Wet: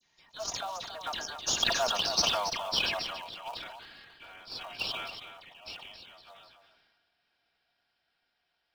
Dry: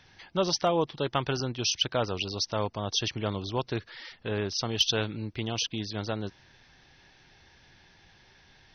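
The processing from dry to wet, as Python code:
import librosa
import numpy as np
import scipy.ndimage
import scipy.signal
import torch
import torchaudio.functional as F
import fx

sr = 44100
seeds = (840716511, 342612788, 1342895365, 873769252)

p1 = fx.doppler_pass(x, sr, speed_mps=40, closest_m=19.0, pass_at_s=2.23)
p2 = scipy.signal.sosfilt(scipy.signal.butter(12, 610.0, 'highpass', fs=sr, output='sos'), p1)
p3 = fx.high_shelf(p2, sr, hz=5800.0, db=6.0)
p4 = p3 + 0.47 * np.pad(p3, (int(4.3 * sr / 1000.0), 0))[:len(p3)]
p5 = fx.dispersion(p4, sr, late='lows', ms=60.0, hz=1800.0)
p6 = fx.sample_hold(p5, sr, seeds[0], rate_hz=2000.0, jitter_pct=20)
p7 = p5 + F.gain(torch.from_numpy(p6), -10.5).numpy()
p8 = fx.notch(p7, sr, hz=2000.0, q=18.0)
p9 = p8 + fx.echo_single(p8, sr, ms=277, db=-11.0, dry=0)
y = fx.sustainer(p9, sr, db_per_s=34.0)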